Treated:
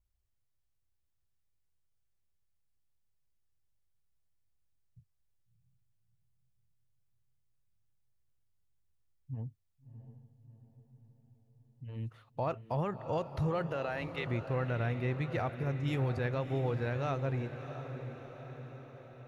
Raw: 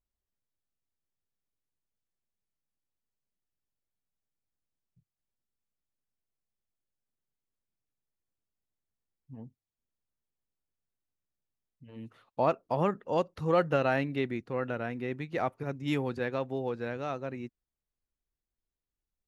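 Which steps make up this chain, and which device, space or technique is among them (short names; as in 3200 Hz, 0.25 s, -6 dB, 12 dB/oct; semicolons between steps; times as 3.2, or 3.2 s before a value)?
13.66–14.26 HPF 180 Hz -> 730 Hz 12 dB/oct; car stereo with a boomy subwoofer (resonant low shelf 150 Hz +10 dB, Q 1.5; limiter -25.5 dBFS, peak gain reduction 11 dB); diffused feedback echo 0.665 s, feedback 59%, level -10 dB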